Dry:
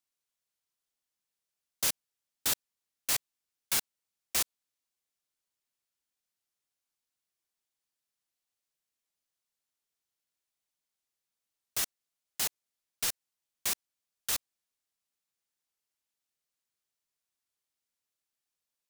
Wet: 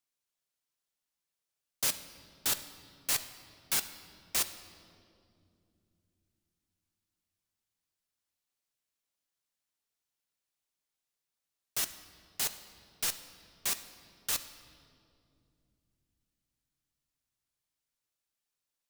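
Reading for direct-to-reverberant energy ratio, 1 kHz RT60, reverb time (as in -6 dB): 8.5 dB, 2.1 s, 2.6 s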